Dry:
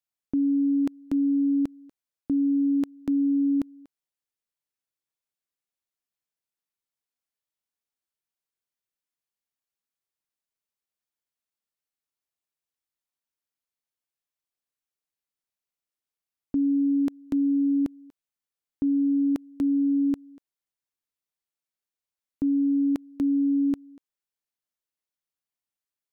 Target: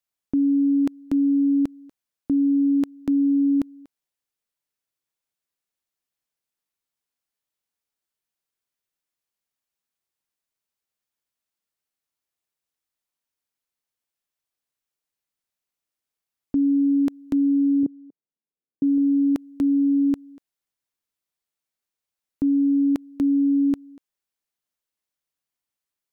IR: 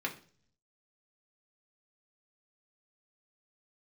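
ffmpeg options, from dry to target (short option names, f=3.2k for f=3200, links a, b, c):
-filter_complex "[0:a]asettb=1/sr,asplit=3[a][b][c];[a]atrim=end=17.834[d];[b]atrim=start=17.83:end=18.98,asetpts=PTS-STARTPTS,afade=t=in:d=0.004:c=qsin,afade=t=out:st=1.146:d=0.004:c=qsin,asuperpass=centerf=260:order=4:qfactor=0.69[e];[c]atrim=start=18.976[f];[d][e]acrossfade=d=0.004:c1=hsin:c2=qsin[g];[g][f]acrossfade=d=0.004:c1=qsin:c2=hsin,volume=3.5dB"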